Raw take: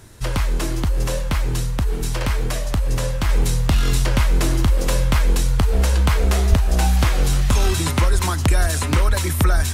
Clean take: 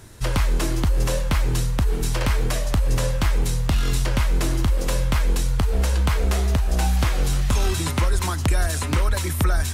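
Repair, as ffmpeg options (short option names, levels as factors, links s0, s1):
-filter_complex "[0:a]asplit=3[s0][s1][s2];[s0]afade=t=out:st=6.49:d=0.02[s3];[s1]highpass=f=140:w=0.5412,highpass=f=140:w=1.3066,afade=t=in:st=6.49:d=0.02,afade=t=out:st=6.61:d=0.02[s4];[s2]afade=t=in:st=6.61:d=0.02[s5];[s3][s4][s5]amix=inputs=3:normalize=0,asetnsamples=n=441:p=0,asendcmd='3.29 volume volume -3.5dB',volume=1"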